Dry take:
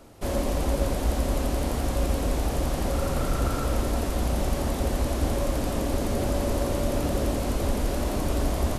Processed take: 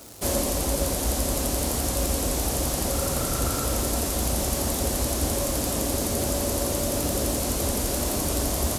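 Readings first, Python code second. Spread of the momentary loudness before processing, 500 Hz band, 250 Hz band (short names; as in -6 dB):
1 LU, +0.5 dB, 0.0 dB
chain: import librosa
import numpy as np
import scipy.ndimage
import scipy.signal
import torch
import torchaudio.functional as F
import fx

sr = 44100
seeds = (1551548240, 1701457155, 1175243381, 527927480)

y = fx.dmg_crackle(x, sr, seeds[0], per_s=280.0, level_db=-42.0)
y = scipy.signal.sosfilt(scipy.signal.butter(2, 56.0, 'highpass', fs=sr, output='sos'), y)
y = fx.bass_treble(y, sr, bass_db=-4, treble_db=13)
y = fx.rider(y, sr, range_db=10, speed_s=0.5)
y = fx.low_shelf(y, sr, hz=190.0, db=5.0)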